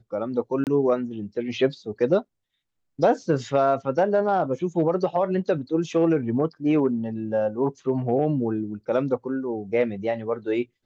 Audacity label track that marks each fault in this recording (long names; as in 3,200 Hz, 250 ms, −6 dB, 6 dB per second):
0.640000	0.670000	drop-out 28 ms